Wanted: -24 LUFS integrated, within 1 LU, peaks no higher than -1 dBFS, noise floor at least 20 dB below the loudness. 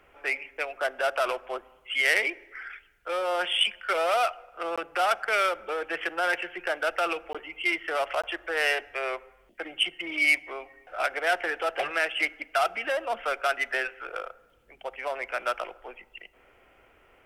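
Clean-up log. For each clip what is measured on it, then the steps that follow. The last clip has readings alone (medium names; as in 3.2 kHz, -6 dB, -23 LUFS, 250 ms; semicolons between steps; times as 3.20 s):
dropouts 3; longest dropout 16 ms; loudness -27.5 LUFS; peak level -7.5 dBFS; loudness target -24.0 LUFS
-> interpolate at 4.76/7.33/8.22 s, 16 ms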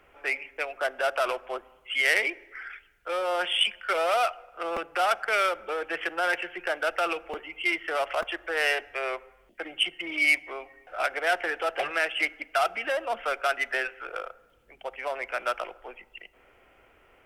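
dropouts 0; loudness -27.5 LUFS; peak level -7.5 dBFS; loudness target -24.0 LUFS
-> trim +3.5 dB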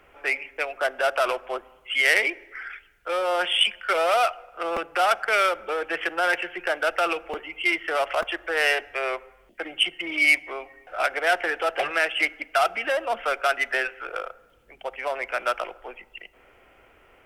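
loudness -24.0 LUFS; peak level -4.0 dBFS; noise floor -57 dBFS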